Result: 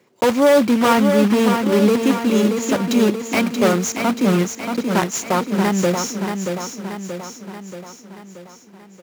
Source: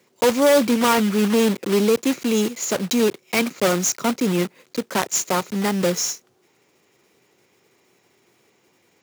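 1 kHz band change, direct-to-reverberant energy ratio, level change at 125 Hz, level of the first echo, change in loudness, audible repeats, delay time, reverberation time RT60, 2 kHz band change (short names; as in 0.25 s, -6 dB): +4.0 dB, none, +5.0 dB, -6.0 dB, +2.5 dB, 6, 0.63 s, none, +2.5 dB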